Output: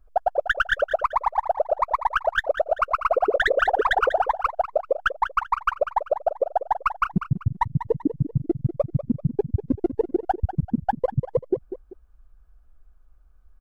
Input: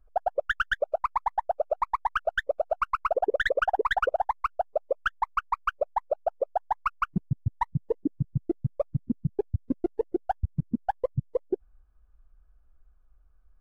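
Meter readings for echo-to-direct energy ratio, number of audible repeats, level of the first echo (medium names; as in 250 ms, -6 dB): -10.5 dB, 2, -11.0 dB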